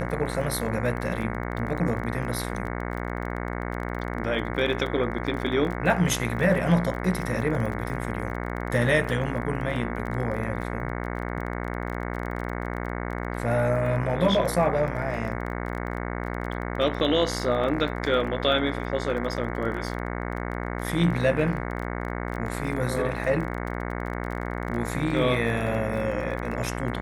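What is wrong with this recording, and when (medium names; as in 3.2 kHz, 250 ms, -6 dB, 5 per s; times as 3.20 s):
buzz 60 Hz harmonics 37 -31 dBFS
crackle 24 per s -32 dBFS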